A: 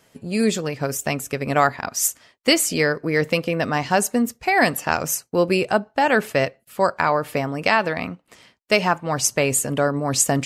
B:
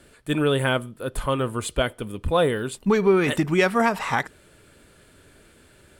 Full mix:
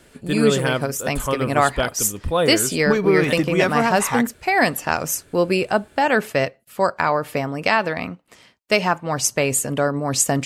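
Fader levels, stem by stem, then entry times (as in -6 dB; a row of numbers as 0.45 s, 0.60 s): 0.0 dB, +0.5 dB; 0.00 s, 0.00 s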